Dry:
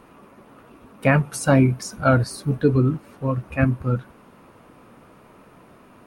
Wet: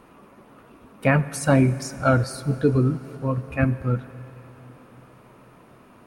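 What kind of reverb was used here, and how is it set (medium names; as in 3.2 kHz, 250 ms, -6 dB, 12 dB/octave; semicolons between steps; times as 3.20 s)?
Schroeder reverb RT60 3.8 s, combs from 32 ms, DRR 15 dB; trim -1.5 dB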